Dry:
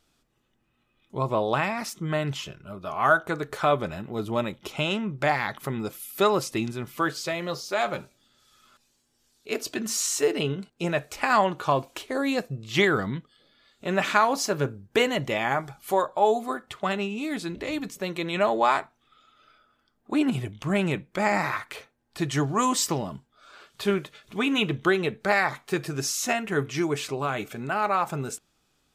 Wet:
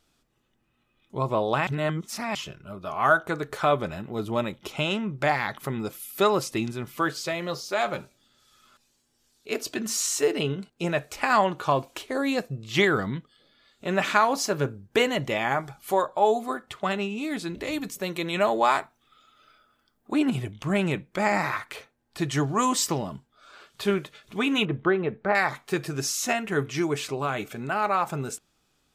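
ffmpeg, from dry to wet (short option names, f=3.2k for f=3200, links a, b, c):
-filter_complex "[0:a]asettb=1/sr,asplit=3[a][b][c];[a]atrim=end=17.544[d];[b]atrim=start=17.54:end=20.13,asetpts=PTS-STARTPTS,afade=t=in:d=0.004:c=qsin,afade=t=out:st=2.586:d=0.004:c=qsin,highshelf=f=8.3k:g=9[e];[c]atrim=start=20.126[f];[d][e]acrossfade=d=0.004:c1=hsin:c2=qsin[g];[g][f]acrossfade=d=0.004:c1=qsin:c2=hsin,asettb=1/sr,asplit=3[h][i][j];[h]atrim=end=24.654[k];[i]atrim=start=24.65:end=25.35,asetpts=PTS-STARTPTS,afade=t=in:d=0.004:c=qsin,afade=t=out:st=0.696:d=0.004:c=qsin,lowpass=1.6k[l];[j]atrim=start=25.346[m];[k][l]acrossfade=d=0.004:c1=hsin:c2=qsin[n];[n][m]acrossfade=d=0.004:c1=qsin:c2=hsin,asplit=3[o][p][q];[o]atrim=end=1.672[r];[p]atrim=start=1.668:end=2.352,asetpts=PTS-STARTPTS,areverse[s];[q]atrim=start=2.348[t];[r][s]acrossfade=d=0.004:c1=hsin:c2=hsin[u];[u][t]acrossfade=d=0.004:c1=hsin:c2=hsin"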